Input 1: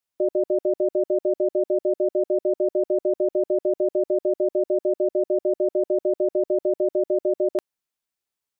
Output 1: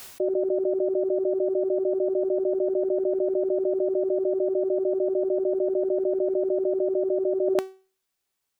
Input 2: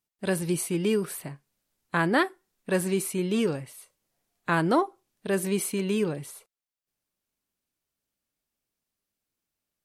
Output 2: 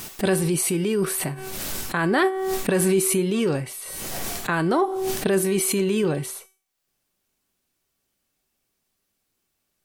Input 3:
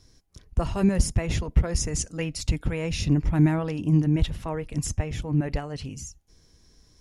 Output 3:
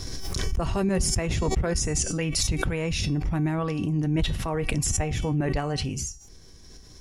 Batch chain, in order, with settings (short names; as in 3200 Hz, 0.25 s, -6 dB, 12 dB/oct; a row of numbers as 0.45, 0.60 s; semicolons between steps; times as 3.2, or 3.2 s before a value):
reverse; compressor 6:1, threshold -30 dBFS; reverse; resonator 380 Hz, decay 0.37 s, harmonics all, mix 70%; backwards sustainer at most 21 dB/s; normalise peaks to -9 dBFS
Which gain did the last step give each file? +15.5, +19.0, +16.0 dB